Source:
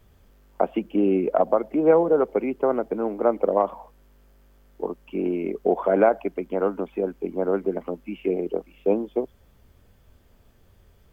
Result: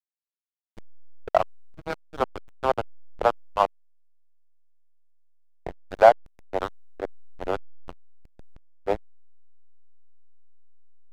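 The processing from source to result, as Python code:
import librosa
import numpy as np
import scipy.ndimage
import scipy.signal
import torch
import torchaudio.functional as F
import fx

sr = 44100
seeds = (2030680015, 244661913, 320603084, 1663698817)

y = fx.filter_lfo_highpass(x, sr, shape='sine', hz=2.1, low_hz=730.0, high_hz=2600.0, q=1.8)
y = fx.backlash(y, sr, play_db=-19.5)
y = y * librosa.db_to_amplitude(3.0)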